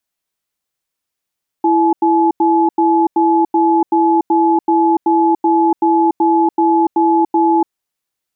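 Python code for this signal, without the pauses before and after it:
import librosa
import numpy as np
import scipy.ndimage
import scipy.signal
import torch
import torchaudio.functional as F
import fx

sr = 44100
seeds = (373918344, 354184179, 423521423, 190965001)

y = fx.cadence(sr, length_s=6.07, low_hz=332.0, high_hz=854.0, on_s=0.29, off_s=0.09, level_db=-12.0)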